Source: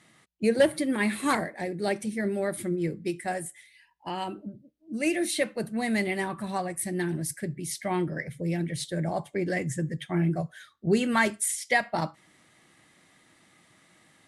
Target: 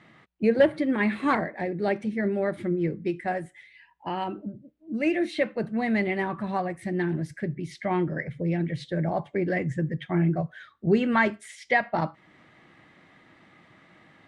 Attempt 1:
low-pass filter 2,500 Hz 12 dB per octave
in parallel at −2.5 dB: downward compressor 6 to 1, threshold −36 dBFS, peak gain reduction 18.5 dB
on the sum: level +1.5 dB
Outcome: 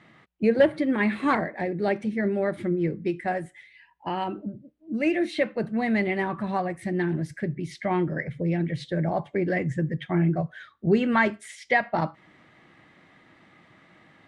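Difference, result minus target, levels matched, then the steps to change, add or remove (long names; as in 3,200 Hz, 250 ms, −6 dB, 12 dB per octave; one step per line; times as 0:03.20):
downward compressor: peak gain reduction −6.5 dB
change: downward compressor 6 to 1, threshold −44 dBFS, peak gain reduction 25 dB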